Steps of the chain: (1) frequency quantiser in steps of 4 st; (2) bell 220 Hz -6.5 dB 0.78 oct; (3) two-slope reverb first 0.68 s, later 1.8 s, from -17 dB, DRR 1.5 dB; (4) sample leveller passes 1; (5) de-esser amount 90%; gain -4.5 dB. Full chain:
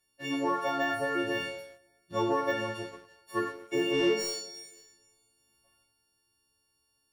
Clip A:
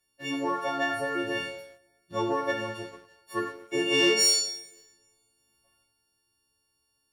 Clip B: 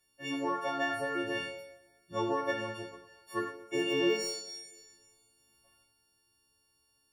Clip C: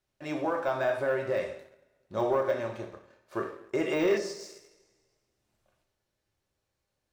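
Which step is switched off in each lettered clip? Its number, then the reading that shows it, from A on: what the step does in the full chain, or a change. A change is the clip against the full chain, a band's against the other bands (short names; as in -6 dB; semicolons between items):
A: 5, momentary loudness spread change +2 LU; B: 4, crest factor change +2.0 dB; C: 1, 4 kHz band -6.5 dB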